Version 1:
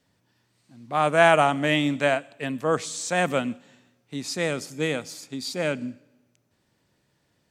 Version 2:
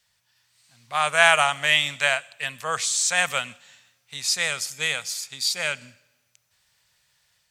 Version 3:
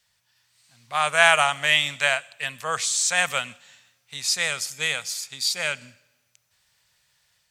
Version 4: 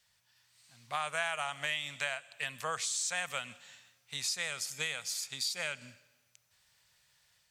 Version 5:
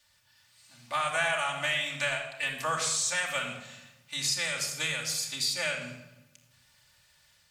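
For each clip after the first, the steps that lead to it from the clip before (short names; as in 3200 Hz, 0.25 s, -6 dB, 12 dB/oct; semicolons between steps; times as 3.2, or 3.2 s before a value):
passive tone stack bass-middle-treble 10-0-10; AGC gain up to 3 dB; low shelf 500 Hz -5 dB; gain +7.5 dB
nothing audible
compressor 4:1, threshold -30 dBFS, peak gain reduction 16.5 dB; gain -3 dB
reverb RT60 0.95 s, pre-delay 3 ms, DRR -1.5 dB; gain +2.5 dB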